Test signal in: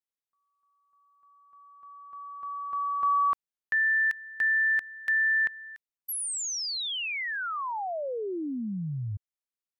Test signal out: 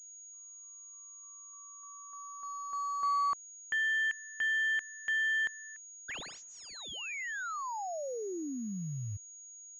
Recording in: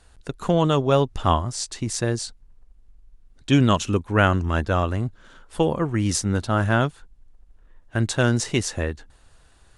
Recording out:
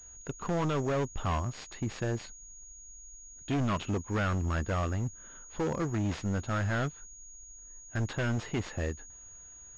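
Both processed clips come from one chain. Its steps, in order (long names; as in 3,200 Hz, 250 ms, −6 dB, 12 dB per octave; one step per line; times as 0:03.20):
log-companded quantiser 8 bits
gain into a clipping stage and back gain 21 dB
switching amplifier with a slow clock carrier 6,700 Hz
level −5.5 dB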